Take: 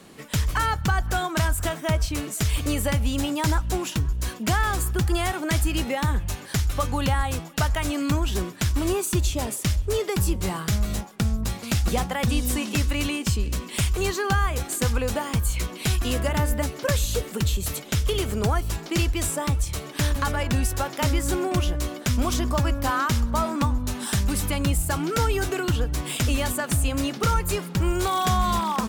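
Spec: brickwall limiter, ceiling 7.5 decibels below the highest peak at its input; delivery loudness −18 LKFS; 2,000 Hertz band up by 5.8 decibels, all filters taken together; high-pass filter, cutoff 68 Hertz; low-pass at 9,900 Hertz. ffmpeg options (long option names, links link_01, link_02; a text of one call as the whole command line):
ffmpeg -i in.wav -af "highpass=68,lowpass=9900,equalizer=frequency=2000:width_type=o:gain=7.5,volume=8.5dB,alimiter=limit=-7dB:level=0:latency=1" out.wav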